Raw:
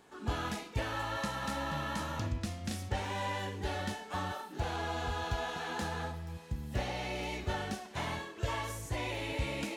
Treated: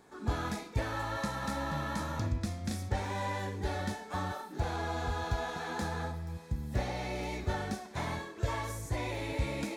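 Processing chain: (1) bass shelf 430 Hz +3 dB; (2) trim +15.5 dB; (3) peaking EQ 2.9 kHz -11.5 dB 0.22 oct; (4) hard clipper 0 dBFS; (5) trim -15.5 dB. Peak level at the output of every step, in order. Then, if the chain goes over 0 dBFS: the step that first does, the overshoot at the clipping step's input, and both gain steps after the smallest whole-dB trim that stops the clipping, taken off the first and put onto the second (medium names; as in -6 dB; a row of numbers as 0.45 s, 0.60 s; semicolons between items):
-19.5 dBFS, -4.0 dBFS, -4.0 dBFS, -4.0 dBFS, -19.5 dBFS; nothing clips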